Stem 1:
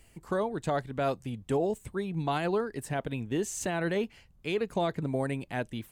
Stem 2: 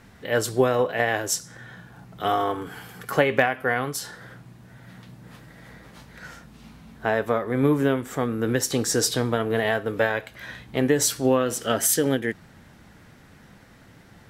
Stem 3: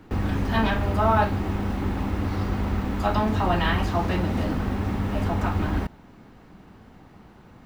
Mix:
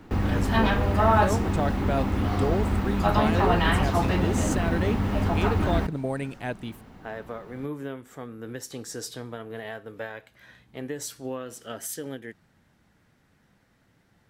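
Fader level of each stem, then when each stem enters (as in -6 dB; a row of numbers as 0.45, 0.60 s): +1.0, -13.5, +0.5 dB; 0.90, 0.00, 0.00 s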